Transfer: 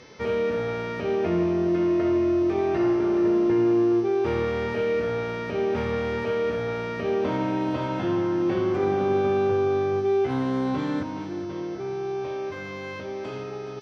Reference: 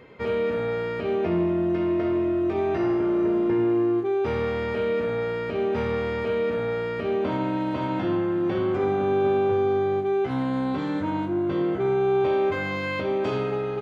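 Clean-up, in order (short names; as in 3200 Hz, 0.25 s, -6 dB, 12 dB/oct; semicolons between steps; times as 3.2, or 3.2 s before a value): de-hum 435.7 Hz, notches 14; inverse comb 0.421 s -11.5 dB; gain correction +8 dB, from 11.03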